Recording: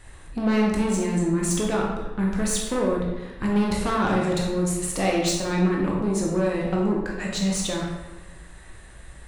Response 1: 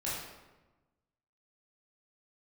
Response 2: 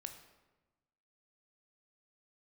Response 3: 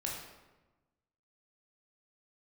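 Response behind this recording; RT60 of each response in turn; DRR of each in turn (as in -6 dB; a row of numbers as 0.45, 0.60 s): 3; 1.1, 1.1, 1.1 s; -8.5, 6.0, -2.5 dB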